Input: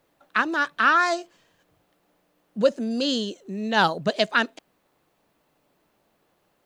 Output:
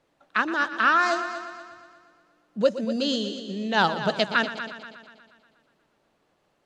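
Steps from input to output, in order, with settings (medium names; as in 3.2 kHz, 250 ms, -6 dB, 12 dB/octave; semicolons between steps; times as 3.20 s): low-pass 7.9 kHz 12 dB/octave; multi-head delay 120 ms, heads first and second, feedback 49%, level -13.5 dB; trim -1.5 dB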